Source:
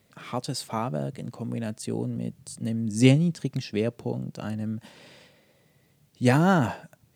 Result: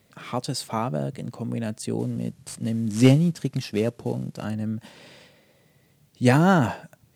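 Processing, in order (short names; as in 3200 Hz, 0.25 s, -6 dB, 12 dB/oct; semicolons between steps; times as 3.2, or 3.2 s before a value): 1.99–4.45 CVSD 64 kbps; gain +2.5 dB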